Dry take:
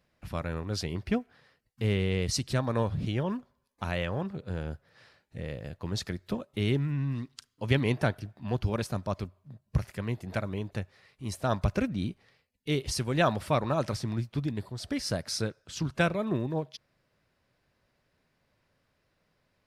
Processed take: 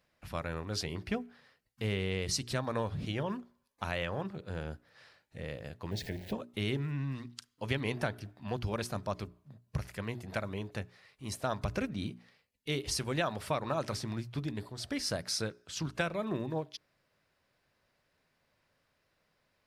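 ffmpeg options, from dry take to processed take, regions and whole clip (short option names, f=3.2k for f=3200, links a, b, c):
-filter_complex "[0:a]asettb=1/sr,asplit=3[a][b][c];[a]atrim=end=5.914[d];[b]atrim=start=5.91:end=6.33,asetpts=PTS-STARTPTS,afade=t=in:d=0.004:c=qsin,afade=t=out:st=0.416:d=0.004:c=qsin,aeval=exprs='val(0)+0.5*0.0141*sgn(val(0))':c=same,asuperstop=centerf=1200:order=4:qfactor=1.3,equalizer=f=7.6k:w=0.47:g=-11.5[e];[c]atrim=start=6.326[f];[d][e]acrossfade=d=0.004:c1=hsin:c2=qsin[g];[g][f]acrossfade=d=0.004:c1=qsin:c2=hsin,lowshelf=f=410:g=-5.5,bandreject=f=60:t=h:w=6,bandreject=f=120:t=h:w=6,bandreject=f=180:t=h:w=6,bandreject=f=240:t=h:w=6,bandreject=f=300:t=h:w=6,bandreject=f=360:t=h:w=6,bandreject=f=420:t=h:w=6,acompressor=threshold=-28dB:ratio=6"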